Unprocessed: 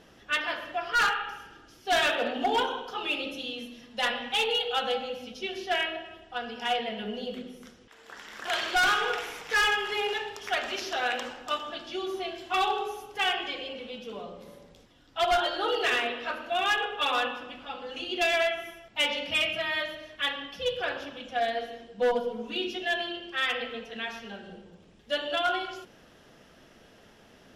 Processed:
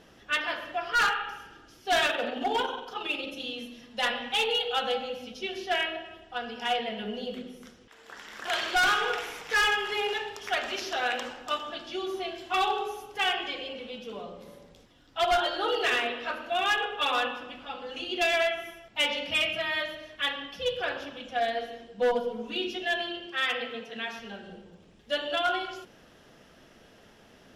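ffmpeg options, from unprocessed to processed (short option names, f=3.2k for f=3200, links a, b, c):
-filter_complex "[0:a]asettb=1/sr,asplit=3[a][b][c];[a]atrim=end=2.064[d];[b]atrim=start=2.06:end=3.4,asetpts=PTS-STARTPTS,afade=t=in:d=0.004:c=qsin,afade=t=out:st=1.336:d=0.004:c=qsin,tremolo=f=22:d=0.4[e];[c]atrim=start=3.396[f];[d][e]acrossfade=d=0.004:c1=hsin:c2=qsin[g];[g][f]acrossfade=d=0.004:c1=qsin:c2=hsin,asettb=1/sr,asplit=3[h][i][j];[h]atrim=end=23.264[k];[i]atrim=start=23.26:end=24.19,asetpts=PTS-STARTPTS,afade=t=in:d=0.004:c=qsin,afade=t=out:st=0.926:d=0.004:c=qsin,highpass=f=100:w=0.5412,highpass=f=100:w=1.3066[l];[j]atrim=start=24.186[m];[k][l]acrossfade=d=0.004:c1=hsin:c2=qsin[n];[n][m]acrossfade=d=0.004:c1=qsin:c2=hsin"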